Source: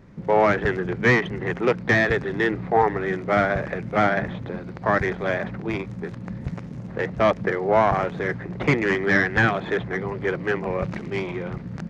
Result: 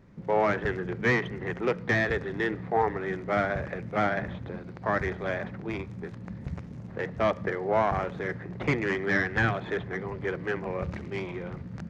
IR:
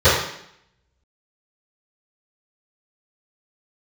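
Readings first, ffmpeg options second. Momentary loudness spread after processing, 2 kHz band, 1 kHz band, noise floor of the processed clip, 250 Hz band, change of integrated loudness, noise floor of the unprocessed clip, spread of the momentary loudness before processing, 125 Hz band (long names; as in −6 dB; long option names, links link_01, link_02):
12 LU, −6.5 dB, −6.5 dB, −42 dBFS, −6.5 dB, −6.5 dB, −37 dBFS, 13 LU, −5.5 dB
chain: -filter_complex "[0:a]asplit=2[link_01][link_02];[link_02]asubboost=boost=6.5:cutoff=110[link_03];[1:a]atrim=start_sample=2205,adelay=38[link_04];[link_03][link_04]afir=irnorm=-1:irlink=0,volume=-45.5dB[link_05];[link_01][link_05]amix=inputs=2:normalize=0,volume=-6.5dB"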